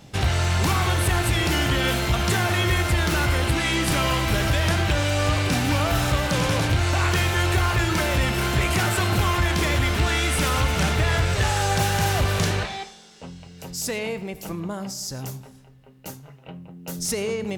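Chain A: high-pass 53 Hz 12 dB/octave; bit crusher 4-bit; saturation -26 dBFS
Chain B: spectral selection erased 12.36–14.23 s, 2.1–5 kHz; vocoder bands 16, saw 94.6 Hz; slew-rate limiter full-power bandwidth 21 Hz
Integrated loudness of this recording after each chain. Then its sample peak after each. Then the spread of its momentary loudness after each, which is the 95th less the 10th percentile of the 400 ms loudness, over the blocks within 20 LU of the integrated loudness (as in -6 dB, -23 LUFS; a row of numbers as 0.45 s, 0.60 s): -30.0 LUFS, -27.5 LUFS; -26.0 dBFS, -12.0 dBFS; 7 LU, 15 LU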